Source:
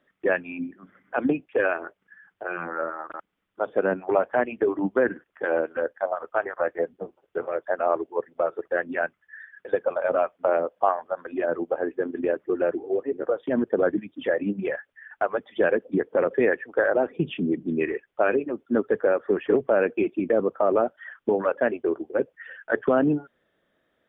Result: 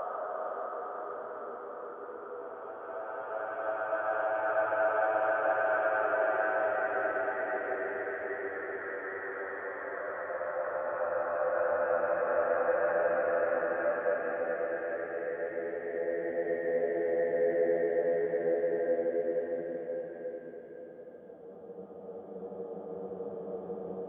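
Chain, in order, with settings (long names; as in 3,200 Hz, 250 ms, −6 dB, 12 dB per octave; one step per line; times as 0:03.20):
extreme stretch with random phases 28×, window 0.25 s, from 0:06.18
level −4.5 dB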